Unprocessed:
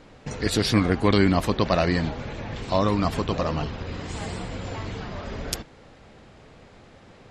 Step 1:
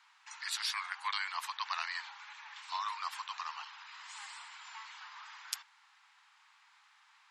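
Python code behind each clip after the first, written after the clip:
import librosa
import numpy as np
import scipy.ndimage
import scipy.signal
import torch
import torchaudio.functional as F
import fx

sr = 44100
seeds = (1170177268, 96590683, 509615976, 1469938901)

y = scipy.signal.sosfilt(scipy.signal.butter(12, 880.0, 'highpass', fs=sr, output='sos'), x)
y = y * 10.0 ** (-8.0 / 20.0)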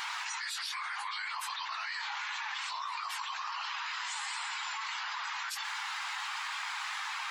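y = fx.phase_scramble(x, sr, seeds[0], window_ms=50)
y = fx.env_flatten(y, sr, amount_pct=100)
y = y * 10.0 ** (-4.0 / 20.0)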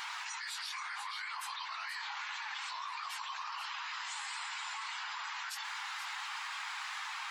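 y = x + 10.0 ** (-9.5 / 20.0) * np.pad(x, (int(480 * sr / 1000.0), 0))[:len(x)]
y = y * 10.0 ** (-4.0 / 20.0)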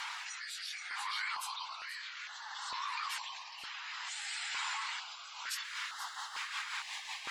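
y = fx.rotary_switch(x, sr, hz=0.6, then_hz=5.5, switch_at_s=5.1)
y = fx.filter_held_notch(y, sr, hz=2.2, low_hz=340.0, high_hz=2400.0)
y = y * 10.0 ** (4.5 / 20.0)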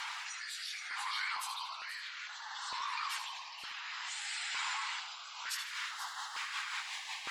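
y = fx.echo_feedback(x, sr, ms=77, feedback_pct=39, wet_db=-9.5)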